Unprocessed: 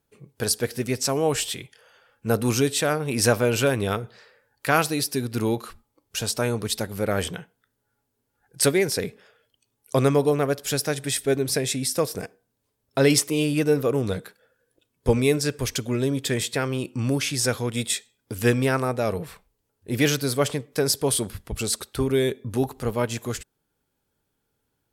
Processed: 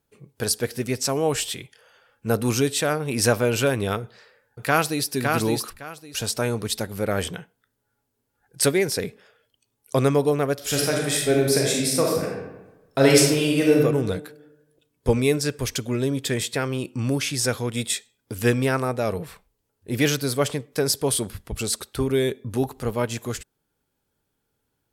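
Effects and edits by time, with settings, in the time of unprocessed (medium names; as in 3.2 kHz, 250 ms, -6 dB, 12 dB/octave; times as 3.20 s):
4.01–5.13 s: echo throw 560 ms, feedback 20%, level -3.5 dB
10.55–13.78 s: reverb throw, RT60 1.1 s, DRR -2 dB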